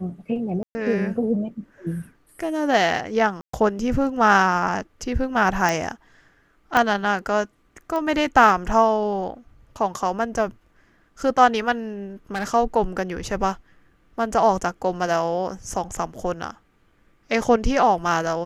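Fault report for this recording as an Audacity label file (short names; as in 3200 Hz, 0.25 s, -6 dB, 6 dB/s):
0.630000	0.750000	gap 0.12 s
3.410000	3.530000	gap 0.124 s
5.690000	5.690000	pop
6.770000	6.770000	pop -6 dBFS
7.960000	7.960000	pop -16 dBFS
12.340000	12.550000	clipped -22 dBFS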